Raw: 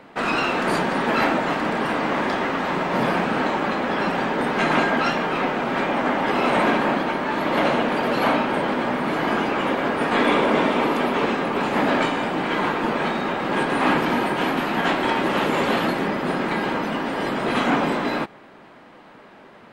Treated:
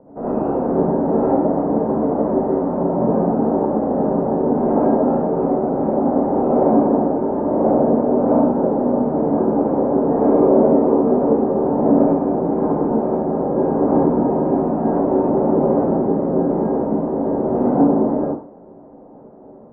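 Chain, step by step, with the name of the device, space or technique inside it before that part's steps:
next room (low-pass filter 690 Hz 24 dB per octave; convolution reverb RT60 0.40 s, pre-delay 61 ms, DRR −7 dB)

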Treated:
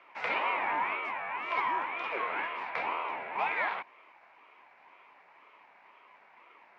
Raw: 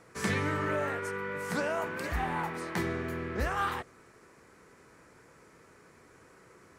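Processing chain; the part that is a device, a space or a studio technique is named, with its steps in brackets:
voice changer toy (ring modulator whose carrier an LFO sweeps 580 Hz, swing 50%, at 2 Hz; loudspeaker in its box 450–3,700 Hz, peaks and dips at 490 Hz −3 dB, 970 Hz +9 dB, 2,300 Hz +9 dB)

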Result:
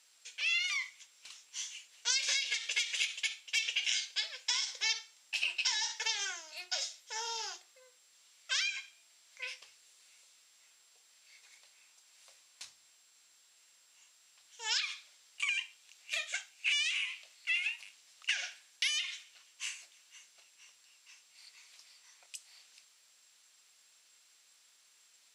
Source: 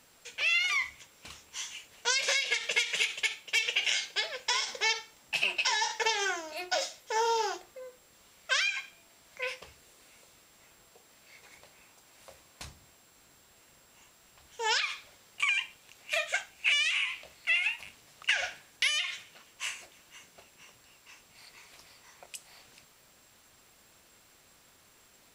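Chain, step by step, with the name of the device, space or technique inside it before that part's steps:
piezo pickup straight into a mixer (low-pass filter 6,000 Hz 12 dB per octave; first difference)
level +4 dB

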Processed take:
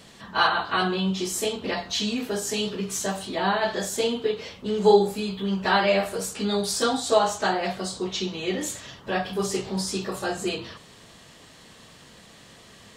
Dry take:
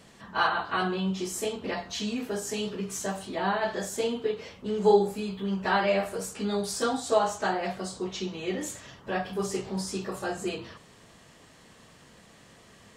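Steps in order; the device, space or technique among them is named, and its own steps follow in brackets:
presence and air boost (parametric band 3,800 Hz +5.5 dB 0.87 octaves; high-shelf EQ 10,000 Hz +4 dB)
level +3.5 dB

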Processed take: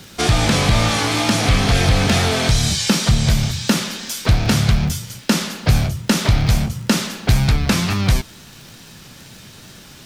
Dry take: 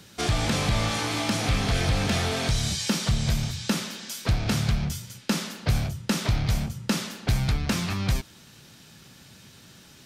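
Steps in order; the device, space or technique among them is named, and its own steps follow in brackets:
vinyl LP (tape wow and flutter; surface crackle 49 per second −39 dBFS; pink noise bed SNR 34 dB)
level +9 dB

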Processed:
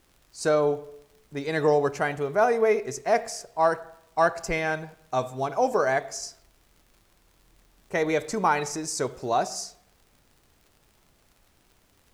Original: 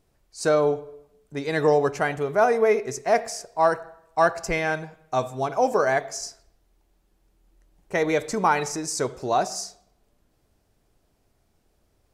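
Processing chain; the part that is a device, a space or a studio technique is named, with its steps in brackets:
vinyl LP (surface crackle; pink noise bed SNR 37 dB)
level −2 dB

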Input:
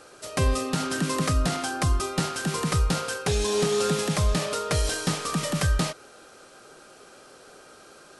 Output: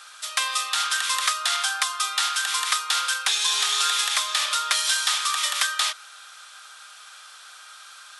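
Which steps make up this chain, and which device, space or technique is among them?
headphones lying on a table (high-pass filter 1,100 Hz 24 dB per octave; parametric band 3,500 Hz +8.5 dB 0.26 octaves)
0:03.32–0:05.17: high-pass filter 260 Hz 12 dB per octave
level +7 dB

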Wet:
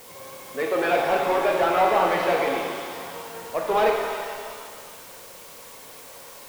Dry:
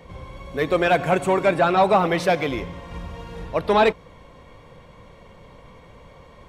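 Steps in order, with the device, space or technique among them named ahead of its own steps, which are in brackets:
tape answering machine (band-pass filter 340–2,800 Hz; soft clipping −15 dBFS, distortion −14 dB; tape wow and flutter; white noise bed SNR 19 dB)
reverb with rising layers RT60 1.9 s, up +7 semitones, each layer −8 dB, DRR 0 dB
level −2 dB

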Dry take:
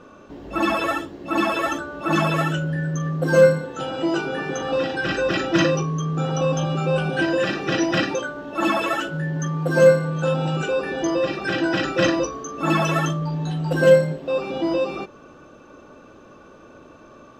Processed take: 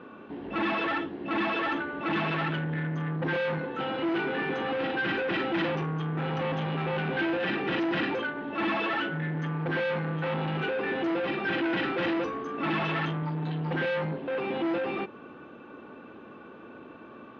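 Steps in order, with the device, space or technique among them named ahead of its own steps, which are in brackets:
guitar amplifier (tube saturation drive 27 dB, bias 0.4; bass and treble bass −6 dB, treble −7 dB; loudspeaker in its box 90–3,500 Hz, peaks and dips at 220 Hz +5 dB, 590 Hz −8 dB, 1,200 Hz −4 dB)
level +3.5 dB

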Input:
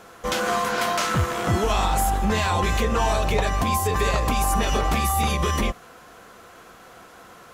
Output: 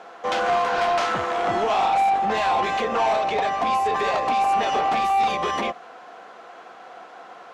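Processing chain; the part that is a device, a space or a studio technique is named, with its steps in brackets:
intercom (band-pass filter 310–4,000 Hz; parametric band 750 Hz +9 dB 0.46 octaves; soft clipping −17 dBFS, distortion −15 dB)
0:03.17–0:03.62: elliptic low-pass filter 9,200 Hz
level +1.5 dB

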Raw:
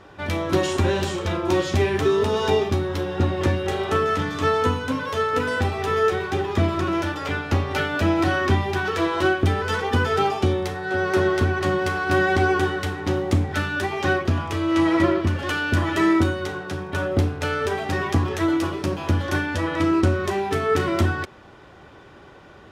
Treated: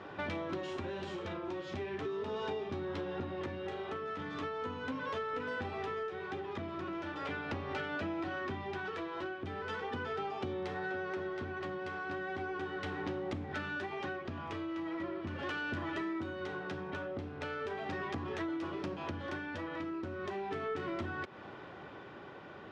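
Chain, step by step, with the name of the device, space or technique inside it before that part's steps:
AM radio (band-pass filter 130–3,600 Hz; downward compressor 10 to 1, threshold −34 dBFS, peak gain reduction 19 dB; soft clipping −27.5 dBFS, distortion −23 dB; amplitude tremolo 0.38 Hz, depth 26%)

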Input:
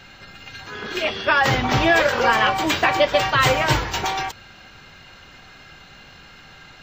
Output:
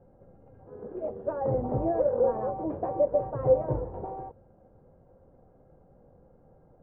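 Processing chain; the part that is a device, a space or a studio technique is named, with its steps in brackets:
under water (low-pass filter 710 Hz 24 dB per octave; parametric band 510 Hz +11.5 dB 0.26 octaves)
level −8.5 dB

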